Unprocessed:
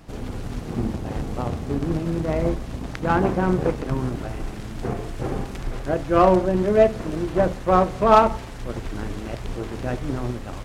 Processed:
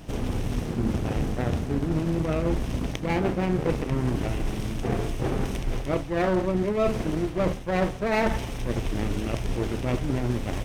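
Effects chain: comb filter that takes the minimum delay 0.34 ms; reverse; compression 6:1, threshold -26 dBFS, peak gain reduction 15 dB; reverse; trim +4.5 dB

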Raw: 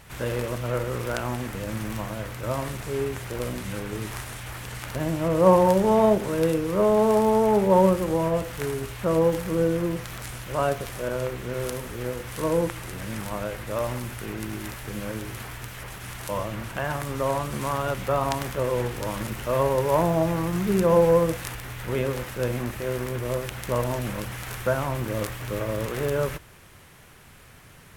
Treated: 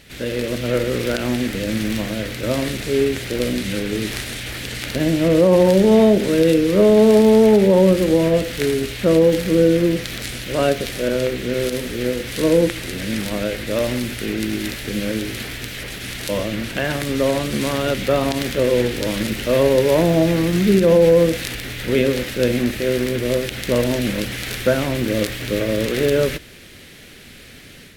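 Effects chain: graphic EQ 125/250/500/1000/2000/4000 Hz -4/+8/+4/-12/+5/+9 dB; peak limiter -11 dBFS, peak gain reduction 8 dB; level rider gain up to 6 dB

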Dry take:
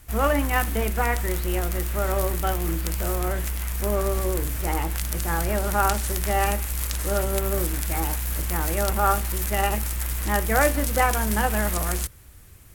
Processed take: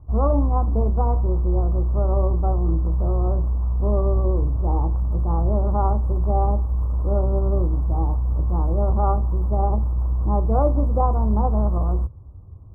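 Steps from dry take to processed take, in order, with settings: elliptic low-pass 1.1 kHz, stop band 40 dB; peaking EQ 90 Hz +12 dB 1.7 oct

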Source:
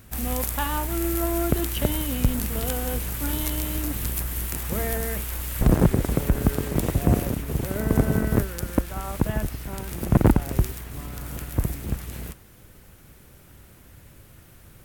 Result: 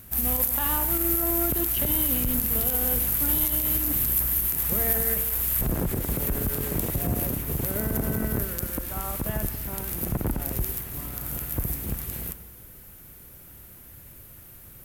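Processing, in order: peak limiter -16.5 dBFS, peak gain reduction 11.5 dB; peaking EQ 13 kHz +14.5 dB 0.62 oct; reverberation RT60 1.3 s, pre-delay 63 ms, DRR 13 dB; trim -1.5 dB

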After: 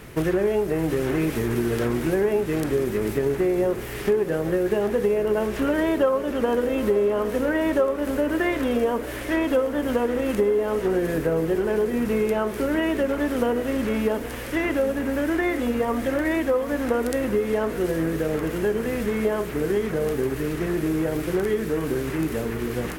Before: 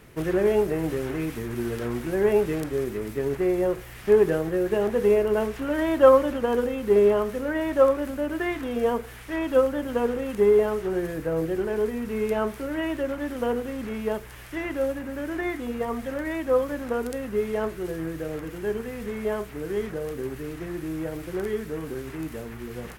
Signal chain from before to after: compression, threshold -28 dBFS, peak gain reduction 16.5 dB; echo that smears into a reverb 846 ms, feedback 58%, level -13.5 dB; trim +8.5 dB

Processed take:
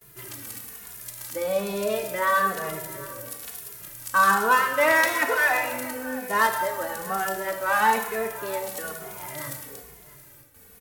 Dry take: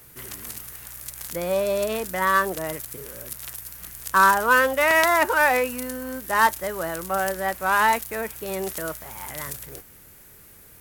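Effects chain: bass shelf 150 Hz -5 dB; gate with hold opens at -39 dBFS; bass shelf 380 Hz +2.5 dB; on a send: delay 677 ms -19 dB; on the sum: plate-style reverb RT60 1.3 s, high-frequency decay 0.9×, pre-delay 0 ms, DRR 4 dB; endless flanger 2.4 ms -1.1 Hz

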